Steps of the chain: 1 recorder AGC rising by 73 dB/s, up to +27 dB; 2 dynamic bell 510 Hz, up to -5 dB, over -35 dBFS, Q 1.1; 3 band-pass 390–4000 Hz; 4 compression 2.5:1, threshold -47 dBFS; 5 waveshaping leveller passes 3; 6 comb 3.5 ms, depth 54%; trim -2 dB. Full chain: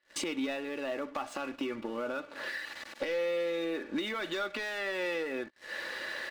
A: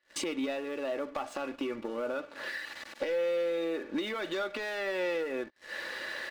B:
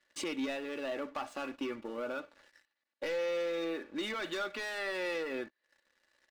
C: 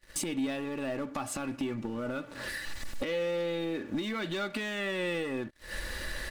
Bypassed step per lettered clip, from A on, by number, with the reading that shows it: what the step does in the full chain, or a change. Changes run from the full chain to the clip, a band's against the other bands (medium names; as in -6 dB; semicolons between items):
2, 500 Hz band +3.0 dB; 1, crest factor change -2.0 dB; 3, 125 Hz band +14.0 dB